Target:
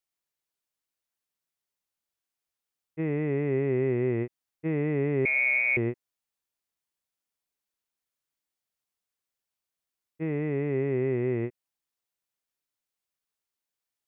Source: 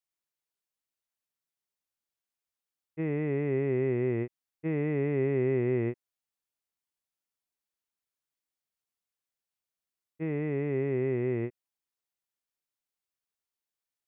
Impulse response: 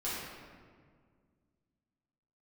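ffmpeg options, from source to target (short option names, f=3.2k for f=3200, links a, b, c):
-filter_complex "[0:a]asettb=1/sr,asplit=3[a][b][c];[a]atrim=end=5.254[d];[b]atrim=start=5.25:end=5.77,asetpts=PTS-STARTPTS,afade=t=in:d=0.004:c=qsin,afade=t=out:st=0.516:d=0.004:c=qsin,lowpass=f=2.2k:t=q:w=0.5098,lowpass=f=2.2k:t=q:w=0.6013,lowpass=f=2.2k:t=q:w=0.9,lowpass=f=2.2k:t=q:w=2.563,afreqshift=-2600[e];[c]atrim=start=5.766[f];[d][e]acrossfade=d=0.004:c1=hsin:c2=qsin[g];[g][f]acrossfade=d=0.004:c1=qsin:c2=hsin,volume=2dB"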